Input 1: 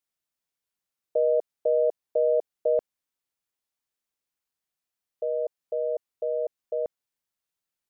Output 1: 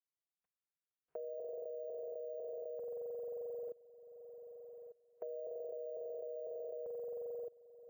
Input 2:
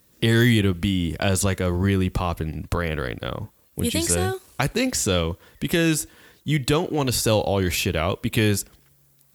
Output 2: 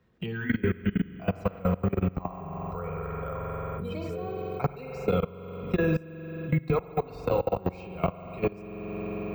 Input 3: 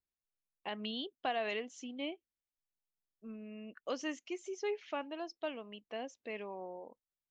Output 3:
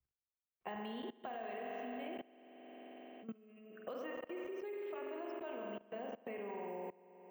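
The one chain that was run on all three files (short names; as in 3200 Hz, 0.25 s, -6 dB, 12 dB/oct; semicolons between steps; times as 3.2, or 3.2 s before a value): spectral noise reduction 15 dB; LPF 1900 Hz 12 dB/oct; notch comb 290 Hz; spring tank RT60 3.3 s, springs 44 ms, chirp 40 ms, DRR -0.5 dB; level quantiser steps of 22 dB; careless resampling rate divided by 2×, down none, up hold; three-band squash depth 70%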